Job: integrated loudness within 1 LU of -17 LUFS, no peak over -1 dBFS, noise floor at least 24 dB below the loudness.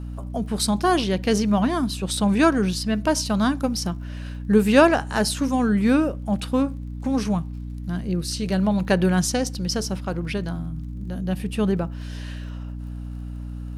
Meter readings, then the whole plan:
ticks 32/s; hum 60 Hz; harmonics up to 300 Hz; hum level -30 dBFS; loudness -22.5 LUFS; peak -2.5 dBFS; loudness target -17.0 LUFS
-> de-click; notches 60/120/180/240/300 Hz; gain +5.5 dB; limiter -1 dBFS

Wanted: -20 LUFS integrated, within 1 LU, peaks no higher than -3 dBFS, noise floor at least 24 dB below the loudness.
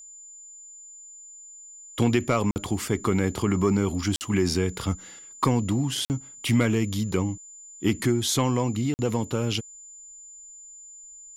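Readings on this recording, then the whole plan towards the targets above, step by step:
dropouts 4; longest dropout 49 ms; steady tone 7100 Hz; tone level -43 dBFS; loudness -25.5 LUFS; peak -10.0 dBFS; loudness target -20.0 LUFS
-> interpolate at 2.51/4.16/6.05/8.94, 49 ms; notch 7100 Hz, Q 30; gain +5.5 dB

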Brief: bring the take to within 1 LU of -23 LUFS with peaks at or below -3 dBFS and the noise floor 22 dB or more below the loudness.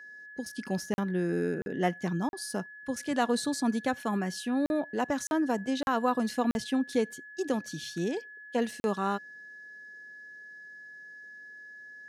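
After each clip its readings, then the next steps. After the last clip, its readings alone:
dropouts 8; longest dropout 41 ms; steady tone 1700 Hz; tone level -45 dBFS; loudness -31.0 LUFS; peak -14.0 dBFS; loudness target -23.0 LUFS
-> interpolate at 0.94/1.62/2.29/4.66/5.27/5.83/6.51/8.8, 41 ms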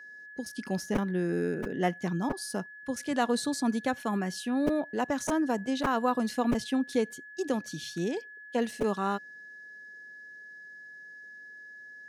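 dropouts 0; steady tone 1700 Hz; tone level -45 dBFS
-> notch 1700 Hz, Q 30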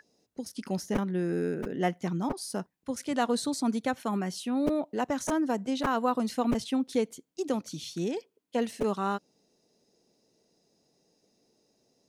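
steady tone none; loudness -31.0 LUFS; peak -14.5 dBFS; loudness target -23.0 LUFS
-> gain +8 dB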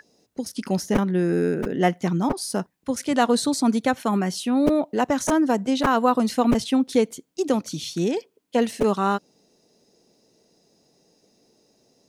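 loudness -23.0 LUFS; peak -6.5 dBFS; noise floor -67 dBFS

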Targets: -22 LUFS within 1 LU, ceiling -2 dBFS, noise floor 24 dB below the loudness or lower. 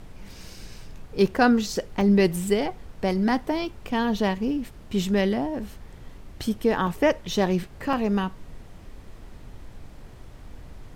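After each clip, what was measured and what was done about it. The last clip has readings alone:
dropouts 4; longest dropout 2.9 ms; noise floor -45 dBFS; noise floor target -49 dBFS; loudness -24.5 LUFS; peak -8.0 dBFS; loudness target -22.0 LUFS
-> interpolate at 1.36/2.01/6.87/7.93, 2.9 ms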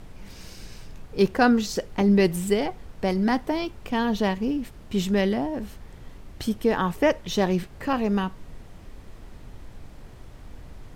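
dropouts 0; noise floor -45 dBFS; noise floor target -49 dBFS
-> noise print and reduce 6 dB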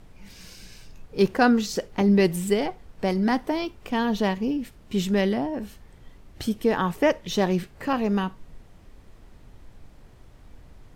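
noise floor -51 dBFS; loudness -24.5 LUFS; peak -8.0 dBFS; loudness target -22.0 LUFS
-> gain +2.5 dB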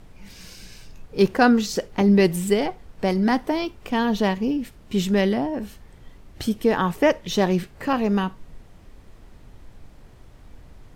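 loudness -22.0 LUFS; peak -5.5 dBFS; noise floor -48 dBFS

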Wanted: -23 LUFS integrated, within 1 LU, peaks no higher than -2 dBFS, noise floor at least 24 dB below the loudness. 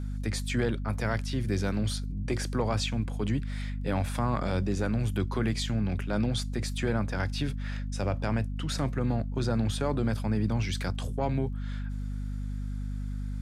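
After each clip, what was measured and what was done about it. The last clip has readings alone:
ticks 25/s; hum 50 Hz; harmonics up to 250 Hz; hum level -31 dBFS; loudness -31.0 LUFS; peak -15.0 dBFS; loudness target -23.0 LUFS
-> de-click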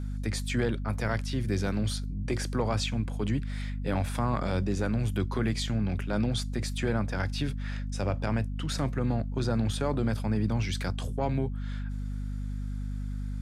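ticks 0.075/s; hum 50 Hz; harmonics up to 250 Hz; hum level -31 dBFS
-> notches 50/100/150/200/250 Hz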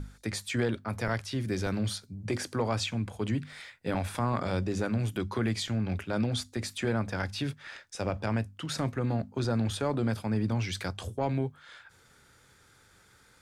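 hum none; loudness -32.0 LUFS; peak -17.5 dBFS; loudness target -23.0 LUFS
-> gain +9 dB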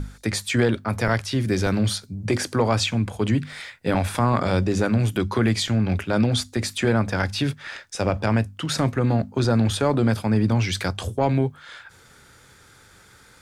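loudness -23.0 LUFS; peak -8.5 dBFS; noise floor -52 dBFS

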